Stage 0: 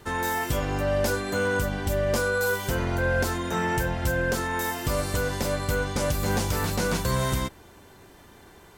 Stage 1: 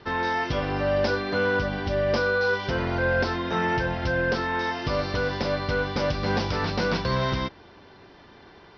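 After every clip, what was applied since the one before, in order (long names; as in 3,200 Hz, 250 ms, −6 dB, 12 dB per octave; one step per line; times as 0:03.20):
Butterworth low-pass 5,500 Hz 96 dB per octave
low-shelf EQ 88 Hz −8.5 dB
level +2 dB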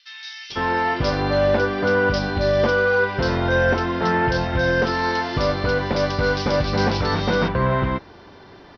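multiband delay without the direct sound highs, lows 500 ms, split 2,600 Hz
level +5.5 dB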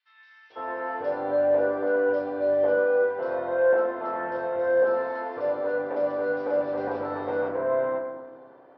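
four-pole ladder band-pass 660 Hz, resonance 40%
convolution reverb RT60 1.4 s, pre-delay 5 ms, DRR −2.5 dB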